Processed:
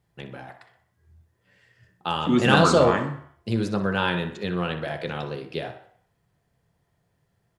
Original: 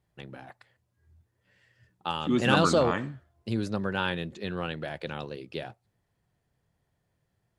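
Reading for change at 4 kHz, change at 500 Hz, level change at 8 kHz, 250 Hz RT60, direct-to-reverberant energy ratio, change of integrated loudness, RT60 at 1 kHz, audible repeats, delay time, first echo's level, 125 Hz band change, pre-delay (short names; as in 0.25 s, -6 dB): +4.5 dB, +5.5 dB, +4.5 dB, 0.45 s, 4.0 dB, +5.5 dB, 0.65 s, 2, 62 ms, -13.0 dB, +6.0 dB, 3 ms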